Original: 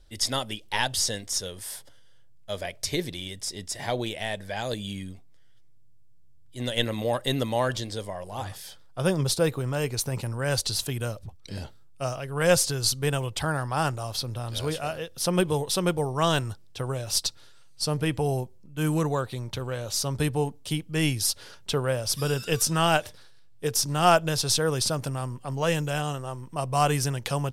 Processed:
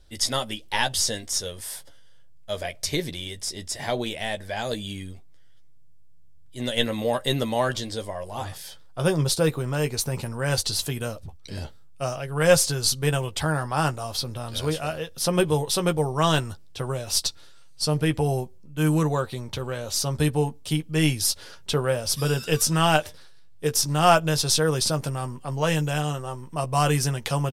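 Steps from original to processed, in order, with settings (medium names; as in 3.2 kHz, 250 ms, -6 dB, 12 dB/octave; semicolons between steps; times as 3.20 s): doubling 13 ms -8 dB; trim +1.5 dB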